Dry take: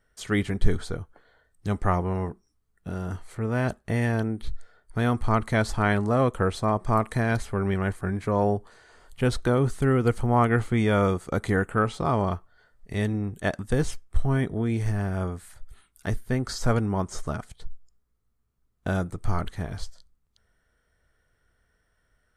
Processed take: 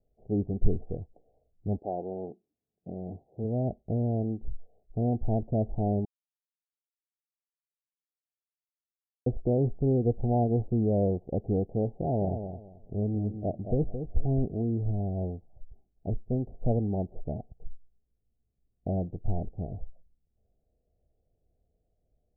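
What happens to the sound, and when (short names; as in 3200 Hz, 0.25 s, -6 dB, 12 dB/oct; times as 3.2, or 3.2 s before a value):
1.78–3.43 HPF 380 Hz -> 110 Hz
6.05–9.26 mute
11.91–14.45 feedback echo 0.218 s, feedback 23%, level -8.5 dB
whole clip: de-esser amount 95%; steep low-pass 780 Hz 96 dB/oct; gain -3 dB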